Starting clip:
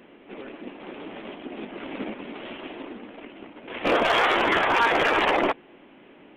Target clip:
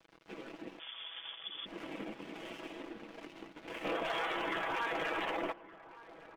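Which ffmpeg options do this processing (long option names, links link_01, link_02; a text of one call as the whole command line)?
ffmpeg -i in.wav -filter_complex "[0:a]aeval=exprs='sgn(val(0))*max(abs(val(0))-0.00501,0)':channel_layout=same,acompressor=threshold=-50dB:ratio=2,asettb=1/sr,asplit=3[link_01][link_02][link_03];[link_01]atrim=end=0.794[link_04];[link_02]atrim=start=0.79:end=1.66,asetpts=PTS-STARTPTS,afade=type=in:duration=0.004:curve=qsin,afade=type=out:start_time=0.866:duration=0.004:curve=qsin,lowpass=frequency=3100:width_type=q:width=0.5098,lowpass=frequency=3100:width_type=q:width=0.6013,lowpass=frequency=3100:width_type=q:width=0.9,lowpass=frequency=3100:width_type=q:width=2.563,afreqshift=-3700[link_05];[link_03]atrim=start=1.656[link_06];[link_04][link_05]acrossfade=duration=0.004:curve1=hsin:curve2=qsin[link_07];[link_07][link_06]acrossfade=duration=0.004:curve1=qsin:curve2=hsin,aecho=1:1:6.1:0.49,asplit=2[link_08][link_09];[link_09]adelay=1166,volume=-16dB,highshelf=frequency=4000:gain=-26.2[link_10];[link_08][link_10]amix=inputs=2:normalize=0,volume=1dB" out.wav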